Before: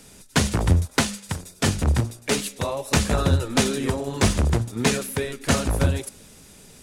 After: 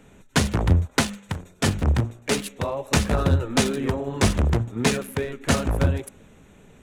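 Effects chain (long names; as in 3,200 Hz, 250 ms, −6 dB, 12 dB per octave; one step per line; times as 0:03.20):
adaptive Wiener filter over 9 samples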